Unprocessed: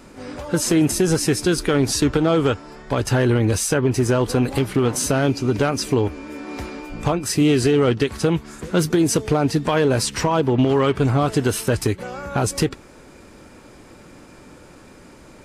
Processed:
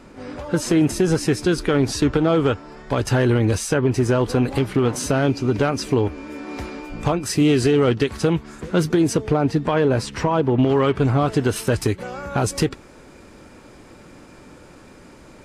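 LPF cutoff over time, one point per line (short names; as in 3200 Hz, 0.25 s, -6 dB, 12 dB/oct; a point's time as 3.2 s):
LPF 6 dB/oct
3700 Hz
from 2.77 s 8500 Hz
from 3.55 s 4600 Hz
from 6.18 s 8000 Hz
from 8.33 s 4100 Hz
from 9.13 s 2100 Hz
from 10.63 s 4000 Hz
from 11.56 s 9200 Hz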